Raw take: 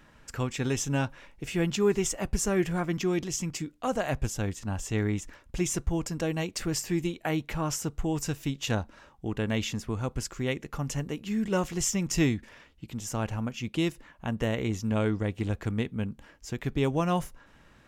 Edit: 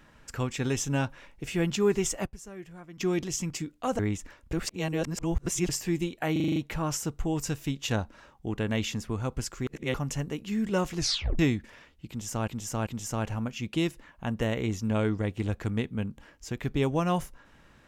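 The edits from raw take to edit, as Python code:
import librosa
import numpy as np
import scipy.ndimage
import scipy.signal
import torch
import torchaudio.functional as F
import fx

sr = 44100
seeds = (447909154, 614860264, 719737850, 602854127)

y = fx.edit(x, sr, fx.fade_down_up(start_s=2.25, length_s=0.76, db=-17.0, fade_s=0.12, curve='exp'),
    fx.cut(start_s=3.99, length_s=1.03),
    fx.reverse_span(start_s=5.56, length_s=1.16),
    fx.stutter(start_s=7.35, slice_s=0.04, count=7),
    fx.reverse_span(start_s=10.46, length_s=0.27),
    fx.tape_stop(start_s=11.76, length_s=0.42),
    fx.repeat(start_s=12.88, length_s=0.39, count=3), tone=tone)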